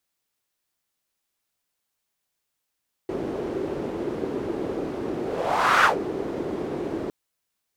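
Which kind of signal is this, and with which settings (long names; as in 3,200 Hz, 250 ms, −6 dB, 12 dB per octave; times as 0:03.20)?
pass-by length 4.01 s, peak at 0:02.75, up 0.66 s, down 0.14 s, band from 370 Hz, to 1,400 Hz, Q 2.9, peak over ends 11.5 dB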